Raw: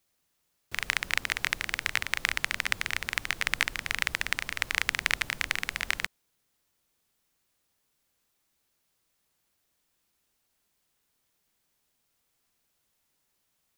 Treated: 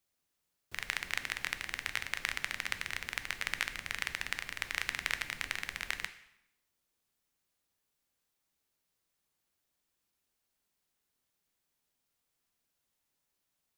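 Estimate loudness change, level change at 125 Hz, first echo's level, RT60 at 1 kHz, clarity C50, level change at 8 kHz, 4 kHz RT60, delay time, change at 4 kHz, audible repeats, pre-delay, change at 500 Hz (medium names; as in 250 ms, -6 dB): -7.0 dB, -7.5 dB, no echo, 0.85 s, 13.5 dB, -7.0 dB, 0.75 s, no echo, -7.0 dB, no echo, 5 ms, -7.0 dB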